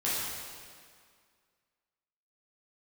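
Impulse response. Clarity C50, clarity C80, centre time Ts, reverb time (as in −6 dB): −2.5 dB, 0.0 dB, 128 ms, 2.0 s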